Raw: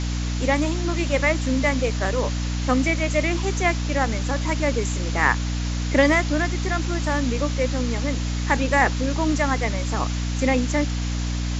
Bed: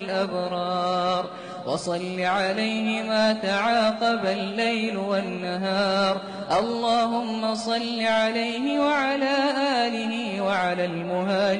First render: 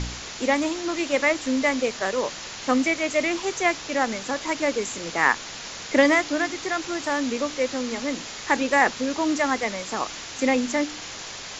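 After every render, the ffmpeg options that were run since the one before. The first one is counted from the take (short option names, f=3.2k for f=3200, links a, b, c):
-af "bandreject=f=60:t=h:w=4,bandreject=f=120:t=h:w=4,bandreject=f=180:t=h:w=4,bandreject=f=240:t=h:w=4,bandreject=f=300:t=h:w=4"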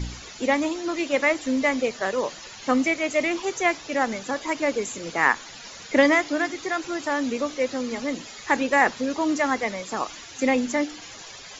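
-af "afftdn=nr=12:nf=-37"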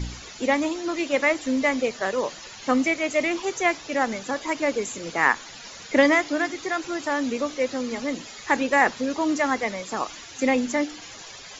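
-af anull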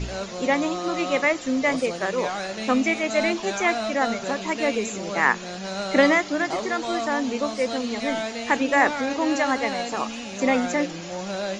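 -filter_complex "[1:a]volume=-7dB[a];[0:a][a]amix=inputs=2:normalize=0"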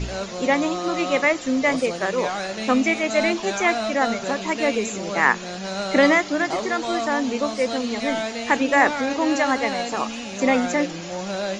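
-af "volume=2dB,alimiter=limit=-3dB:level=0:latency=1"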